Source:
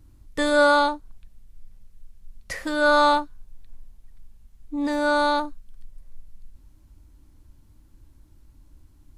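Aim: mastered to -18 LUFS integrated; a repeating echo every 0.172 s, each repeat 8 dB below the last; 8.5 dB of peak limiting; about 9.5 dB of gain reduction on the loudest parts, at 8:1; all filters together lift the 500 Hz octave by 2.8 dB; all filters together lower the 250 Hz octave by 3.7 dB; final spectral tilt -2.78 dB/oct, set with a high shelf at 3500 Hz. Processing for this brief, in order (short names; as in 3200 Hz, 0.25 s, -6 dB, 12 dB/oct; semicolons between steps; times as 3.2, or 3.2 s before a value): bell 250 Hz -6 dB; bell 500 Hz +4.5 dB; high shelf 3500 Hz -5.5 dB; compressor 8:1, threshold -22 dBFS; limiter -23.5 dBFS; feedback echo 0.172 s, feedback 40%, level -8 dB; gain +15.5 dB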